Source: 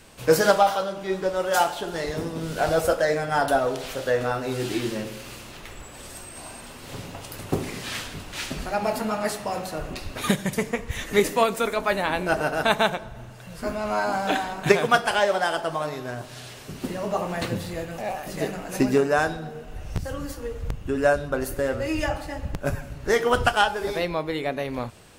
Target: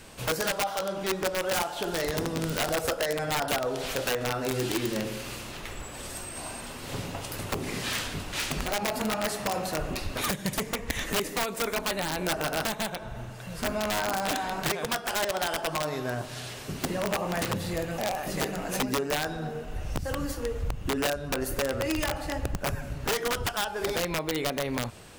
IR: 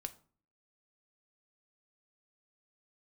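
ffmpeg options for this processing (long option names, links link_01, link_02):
-af "acompressor=threshold=-27dB:ratio=6,aeval=exprs='(mod(13.3*val(0)+1,2)-1)/13.3':channel_layout=same,volume=2dB"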